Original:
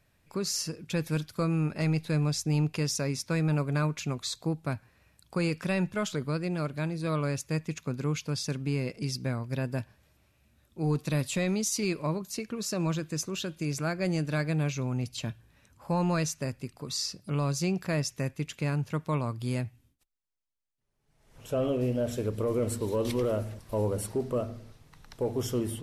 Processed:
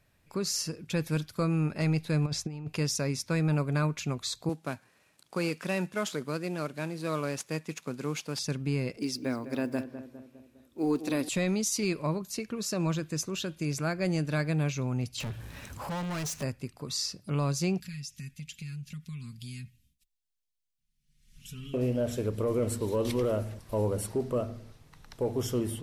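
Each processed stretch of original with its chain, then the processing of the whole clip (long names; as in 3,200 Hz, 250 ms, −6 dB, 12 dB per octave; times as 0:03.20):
0:02.26–0:02.68: low-pass filter 2,600 Hz 6 dB per octave + low-shelf EQ 180 Hz −4.5 dB + compressor whose output falls as the input rises −33 dBFS, ratio −0.5
0:04.49–0:08.39: variable-slope delta modulation 64 kbit/s + high-pass filter 210 Hz
0:08.97–0:11.29: one scale factor per block 7 bits + low shelf with overshoot 210 Hz −8 dB, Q 3 + feedback echo with a low-pass in the loop 203 ms, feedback 53%, low-pass 1,500 Hz, level −10.5 dB
0:15.20–0:16.43: downward compressor 1.5 to 1, threshold −57 dBFS + leveller curve on the samples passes 5
0:17.80–0:21.74: Chebyshev band-stop filter 140–3,000 Hz + comb filter 4.8 ms, depth 73% + downward compressor 4 to 1, threshold −38 dBFS
whole clip: no processing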